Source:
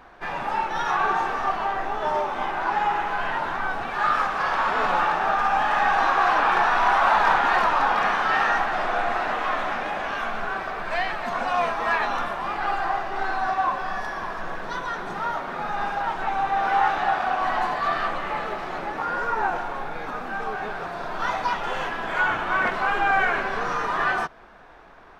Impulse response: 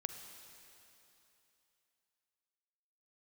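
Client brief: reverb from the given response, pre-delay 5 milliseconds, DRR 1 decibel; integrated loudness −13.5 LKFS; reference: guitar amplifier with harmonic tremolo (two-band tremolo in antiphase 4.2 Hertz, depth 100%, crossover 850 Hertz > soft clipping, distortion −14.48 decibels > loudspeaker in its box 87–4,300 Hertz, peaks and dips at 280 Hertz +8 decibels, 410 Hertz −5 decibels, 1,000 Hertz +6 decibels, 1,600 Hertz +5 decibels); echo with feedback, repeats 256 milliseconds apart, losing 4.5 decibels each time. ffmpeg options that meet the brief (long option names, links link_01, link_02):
-filter_complex "[0:a]aecho=1:1:256|512|768|1024|1280|1536|1792|2048|2304:0.596|0.357|0.214|0.129|0.0772|0.0463|0.0278|0.0167|0.01,asplit=2[link_01][link_02];[1:a]atrim=start_sample=2205,adelay=5[link_03];[link_02][link_03]afir=irnorm=-1:irlink=0,volume=0dB[link_04];[link_01][link_04]amix=inputs=2:normalize=0,acrossover=split=850[link_05][link_06];[link_05]aeval=exprs='val(0)*(1-1/2+1/2*cos(2*PI*4.2*n/s))':channel_layout=same[link_07];[link_06]aeval=exprs='val(0)*(1-1/2-1/2*cos(2*PI*4.2*n/s))':channel_layout=same[link_08];[link_07][link_08]amix=inputs=2:normalize=0,asoftclip=threshold=-18.5dB,highpass=87,equalizer=frequency=280:width_type=q:width=4:gain=8,equalizer=frequency=410:width_type=q:width=4:gain=-5,equalizer=frequency=1000:width_type=q:width=4:gain=6,equalizer=frequency=1600:width_type=q:width=4:gain=5,lowpass=frequency=4300:width=0.5412,lowpass=frequency=4300:width=1.3066,volume=10dB"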